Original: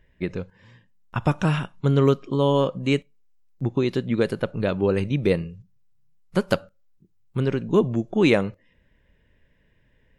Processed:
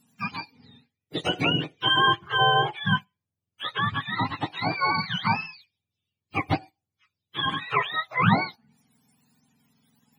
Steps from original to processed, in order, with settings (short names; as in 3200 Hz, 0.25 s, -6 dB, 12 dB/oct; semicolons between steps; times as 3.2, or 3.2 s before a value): spectrum mirrored in octaves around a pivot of 660 Hz; 1.33–2.63 three-band squash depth 40%